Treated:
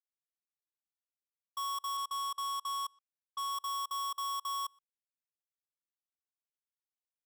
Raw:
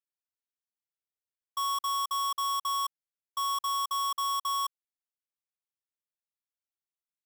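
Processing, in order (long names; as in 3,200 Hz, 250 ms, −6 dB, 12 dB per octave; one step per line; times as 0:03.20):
far-end echo of a speakerphone 120 ms, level −21 dB
bit reduction 12 bits
0:01.97–0:03.52: low-pass that shuts in the quiet parts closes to 2,200 Hz, open at −31 dBFS
level −6 dB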